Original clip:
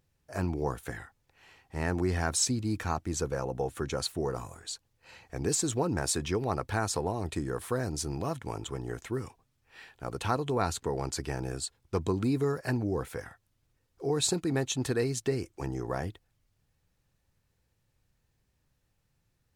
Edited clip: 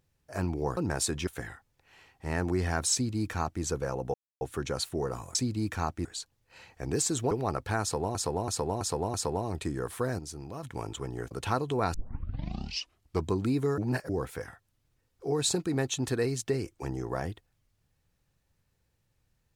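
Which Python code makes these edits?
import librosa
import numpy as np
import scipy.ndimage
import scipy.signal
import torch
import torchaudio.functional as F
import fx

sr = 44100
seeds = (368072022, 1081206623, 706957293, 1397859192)

y = fx.edit(x, sr, fx.duplicate(start_s=2.43, length_s=0.7, to_s=4.58),
    fx.insert_silence(at_s=3.64, length_s=0.27),
    fx.move(start_s=5.84, length_s=0.5, to_s=0.77),
    fx.repeat(start_s=6.85, length_s=0.33, count=5),
    fx.clip_gain(start_s=7.9, length_s=0.44, db=-7.5),
    fx.cut(start_s=9.02, length_s=1.07),
    fx.tape_start(start_s=10.72, length_s=1.31),
    fx.reverse_span(start_s=12.56, length_s=0.31), tone=tone)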